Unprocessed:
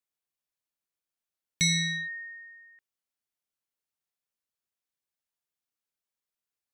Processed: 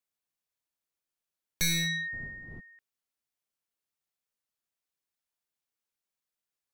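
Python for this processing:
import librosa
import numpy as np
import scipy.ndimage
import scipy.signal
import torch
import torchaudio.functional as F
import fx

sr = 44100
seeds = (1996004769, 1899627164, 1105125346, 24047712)

y = np.minimum(x, 2.0 * 10.0 ** (-27.5 / 20.0) - x)
y = fx.dmg_wind(y, sr, seeds[0], corner_hz=180.0, level_db=-39.0, at=(2.12, 2.59), fade=0.02)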